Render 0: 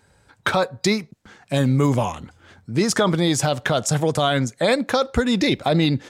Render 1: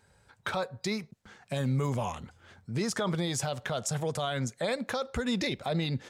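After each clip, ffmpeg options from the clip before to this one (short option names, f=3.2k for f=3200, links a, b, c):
-af "equalizer=f=300:t=o:w=0.22:g=-11,alimiter=limit=-15.5dB:level=0:latency=1:release=131,volume=-6dB"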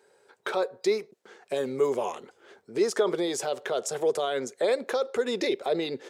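-af "highpass=f=400:t=q:w=4.9"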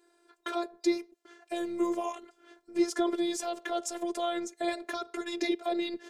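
-af "afftfilt=real='hypot(re,im)*cos(PI*b)':imag='0':win_size=512:overlap=0.75"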